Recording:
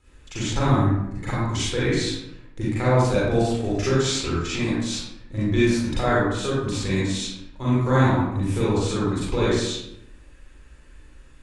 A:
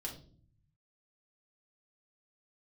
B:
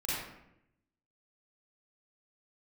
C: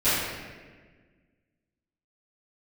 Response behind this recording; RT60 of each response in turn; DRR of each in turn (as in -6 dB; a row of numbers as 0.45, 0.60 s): B; 0.45, 0.80, 1.5 s; -2.0, -9.5, -19.0 dB